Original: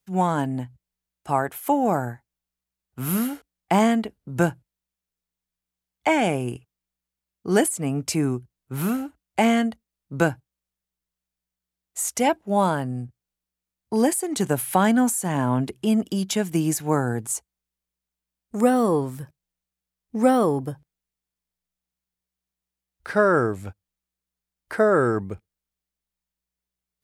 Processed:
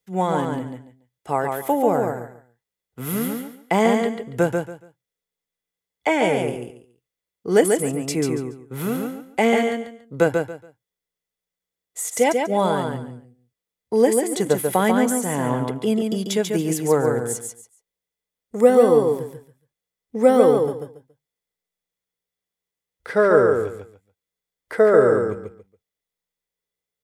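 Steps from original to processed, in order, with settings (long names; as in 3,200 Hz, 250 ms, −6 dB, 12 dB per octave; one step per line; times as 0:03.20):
low-shelf EQ 88 Hz −6 dB
hollow resonant body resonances 470/2,000/3,400 Hz, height 11 dB, ringing for 30 ms
on a send: repeating echo 141 ms, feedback 23%, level −4.5 dB
on the sum: level −1.5 dB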